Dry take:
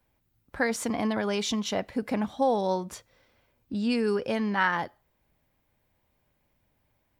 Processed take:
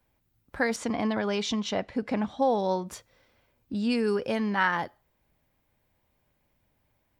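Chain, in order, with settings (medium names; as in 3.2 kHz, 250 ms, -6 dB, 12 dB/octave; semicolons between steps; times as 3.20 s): 0.76–2.86 s: low-pass 6 kHz 12 dB/octave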